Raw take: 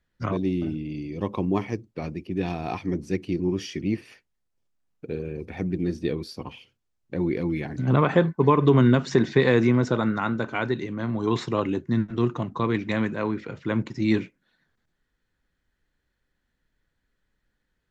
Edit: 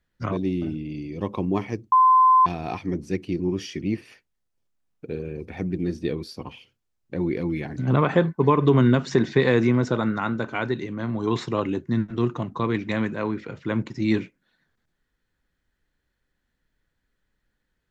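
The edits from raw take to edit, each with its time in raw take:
0:01.92–0:02.46: beep over 1,030 Hz −12 dBFS

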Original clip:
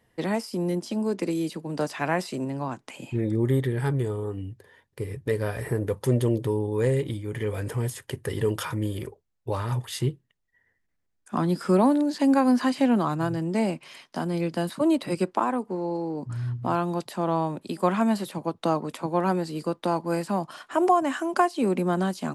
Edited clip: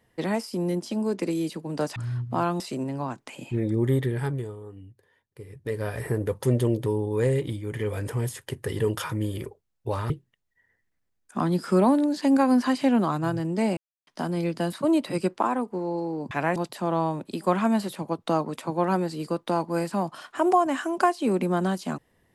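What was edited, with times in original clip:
0:01.96–0:02.21: swap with 0:16.28–0:16.92
0:03.70–0:05.59: duck −10.5 dB, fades 0.49 s
0:09.71–0:10.07: remove
0:13.74–0:14.04: silence

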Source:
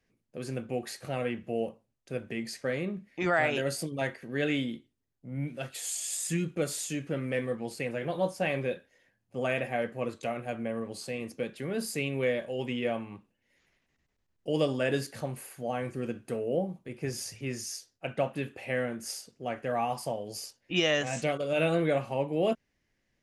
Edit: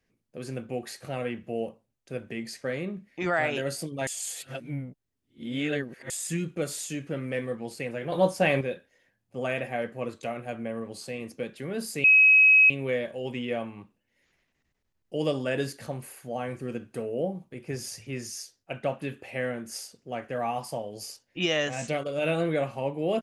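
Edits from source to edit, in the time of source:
0:04.07–0:06.10: reverse
0:08.12–0:08.61: clip gain +6.5 dB
0:12.04: insert tone 2,550 Hz −13.5 dBFS 0.66 s

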